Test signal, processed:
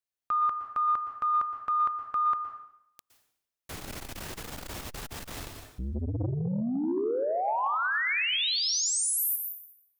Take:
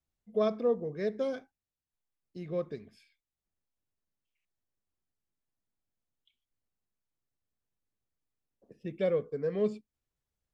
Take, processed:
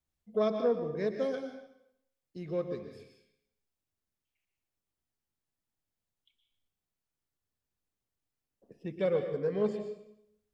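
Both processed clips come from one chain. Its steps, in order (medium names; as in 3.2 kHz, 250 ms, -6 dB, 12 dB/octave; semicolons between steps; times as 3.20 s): plate-style reverb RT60 0.75 s, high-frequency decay 0.95×, pre-delay 105 ms, DRR 5.5 dB; transformer saturation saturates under 300 Hz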